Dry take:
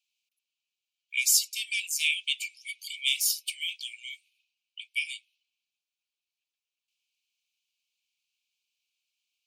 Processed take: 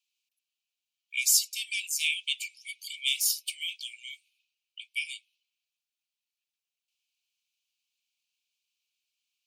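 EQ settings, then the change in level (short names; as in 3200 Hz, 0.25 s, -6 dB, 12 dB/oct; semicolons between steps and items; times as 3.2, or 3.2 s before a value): Bessel high-pass 2100 Hz; 0.0 dB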